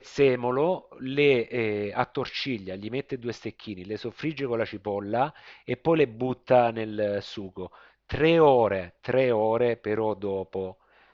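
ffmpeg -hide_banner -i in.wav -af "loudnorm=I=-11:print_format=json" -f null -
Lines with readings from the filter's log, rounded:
"input_i" : "-25.7",
"input_tp" : "-7.0",
"input_lra" : "5.5",
"input_thresh" : "-36.2",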